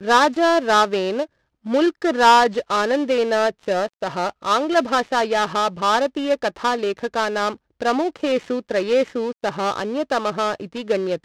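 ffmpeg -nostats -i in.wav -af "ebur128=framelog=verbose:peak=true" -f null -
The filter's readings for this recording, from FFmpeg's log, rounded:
Integrated loudness:
  I:         -20.3 LUFS
  Threshold: -30.3 LUFS
Loudness range:
  LRA:         4.4 LU
  Threshold: -40.5 LUFS
  LRA low:   -22.6 LUFS
  LRA high:  -18.3 LUFS
True peak:
  Peak:       -1.1 dBFS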